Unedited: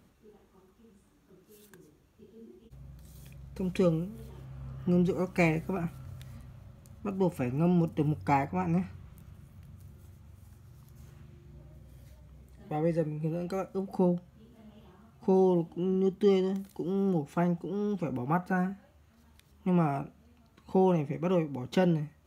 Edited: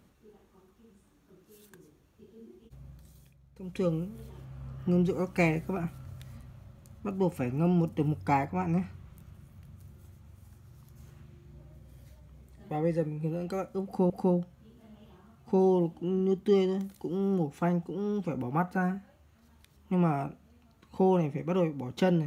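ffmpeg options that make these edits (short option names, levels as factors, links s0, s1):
-filter_complex "[0:a]asplit=4[s0][s1][s2][s3];[s0]atrim=end=3.34,asetpts=PTS-STARTPTS,afade=t=out:st=2.89:d=0.45:silence=0.237137[s4];[s1]atrim=start=3.34:end=3.58,asetpts=PTS-STARTPTS,volume=0.237[s5];[s2]atrim=start=3.58:end=14.102,asetpts=PTS-STARTPTS,afade=t=in:d=0.45:silence=0.237137[s6];[s3]atrim=start=13.848[s7];[s4][s5][s6]concat=n=3:v=0:a=1[s8];[s8][s7]acrossfade=d=0.004:c1=hsin:c2=hsin"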